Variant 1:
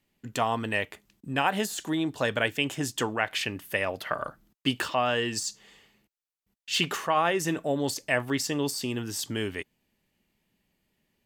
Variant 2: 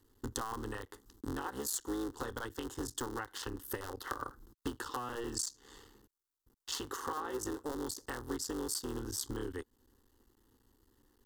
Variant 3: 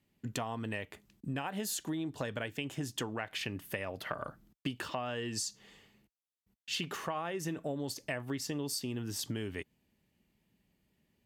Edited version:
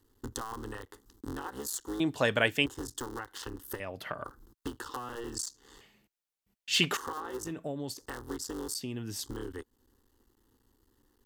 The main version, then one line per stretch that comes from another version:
2
2–2.66 from 1
3.8–4.24 from 3
5.81–6.97 from 1
7.48–7.97 from 3, crossfade 0.10 s
8.75–9.23 from 3

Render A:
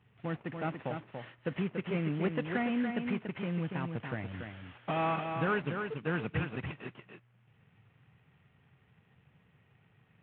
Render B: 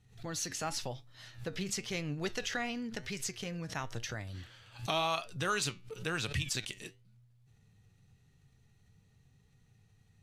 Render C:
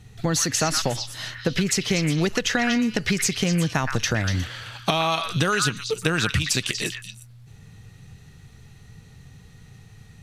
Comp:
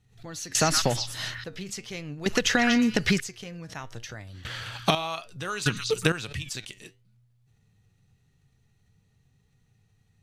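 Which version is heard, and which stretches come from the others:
B
0.55–1.44 from C
2.26–3.2 from C
4.45–4.95 from C
5.66–6.12 from C
not used: A

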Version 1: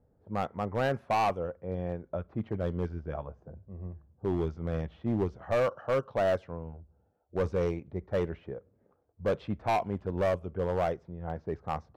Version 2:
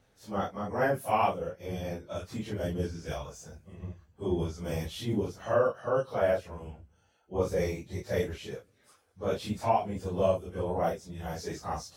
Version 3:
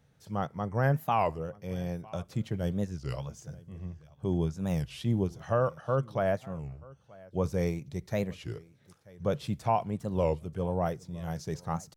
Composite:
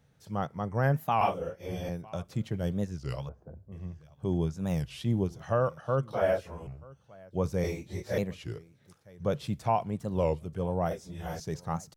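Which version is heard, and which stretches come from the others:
3
1.21–1.89 from 2
3.29–3.72 from 1
6.13–6.67 from 2
7.64–8.18 from 2
10.91–11.4 from 2

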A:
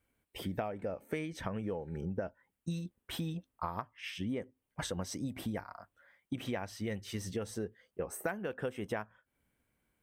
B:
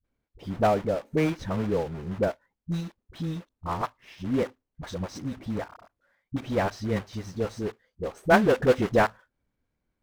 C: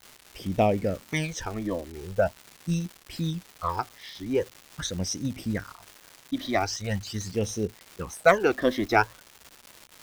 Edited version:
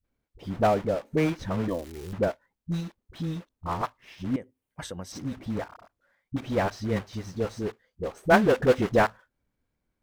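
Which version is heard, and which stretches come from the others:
B
1.68–2.13 from C
4.36–5.12 from A

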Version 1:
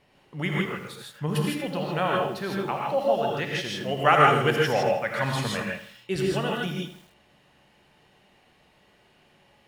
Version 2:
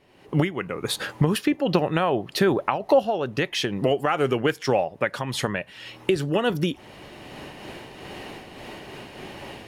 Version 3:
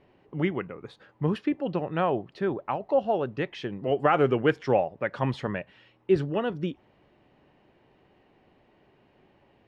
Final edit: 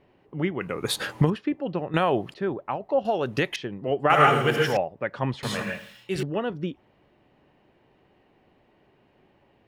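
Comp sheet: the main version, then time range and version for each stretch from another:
3
0.61–1.3 from 2
1.94–2.34 from 2
3.05–3.56 from 2
4.1–4.77 from 1
5.43–6.23 from 1

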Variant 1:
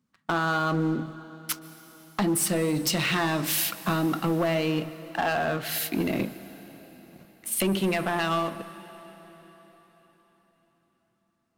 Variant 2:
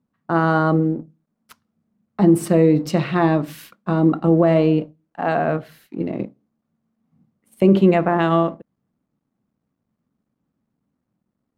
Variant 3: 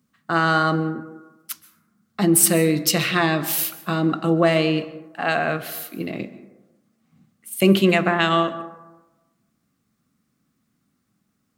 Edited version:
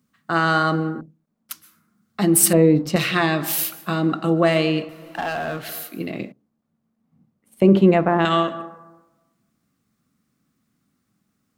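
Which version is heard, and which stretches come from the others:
3
1.01–1.51 from 2
2.53–2.96 from 2
4.89–5.69 from 1
6.32–8.25 from 2

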